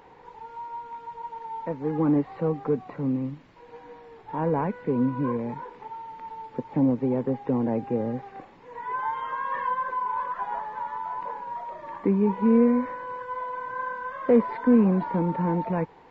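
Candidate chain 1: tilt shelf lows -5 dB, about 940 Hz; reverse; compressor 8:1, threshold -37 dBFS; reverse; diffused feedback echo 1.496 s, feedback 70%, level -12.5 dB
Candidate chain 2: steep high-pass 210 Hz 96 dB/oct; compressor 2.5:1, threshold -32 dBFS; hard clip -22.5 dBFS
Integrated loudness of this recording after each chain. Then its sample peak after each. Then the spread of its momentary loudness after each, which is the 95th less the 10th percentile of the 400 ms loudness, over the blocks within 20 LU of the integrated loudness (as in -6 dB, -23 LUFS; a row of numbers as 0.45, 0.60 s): -40.5, -34.5 LUFS; -27.0, -22.5 dBFS; 5, 8 LU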